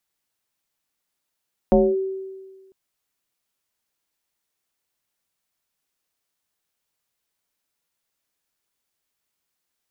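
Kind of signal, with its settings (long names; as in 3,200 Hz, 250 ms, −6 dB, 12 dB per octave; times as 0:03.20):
two-operator FM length 1.00 s, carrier 383 Hz, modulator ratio 0.45, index 1.7, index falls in 0.24 s linear, decay 1.48 s, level −10 dB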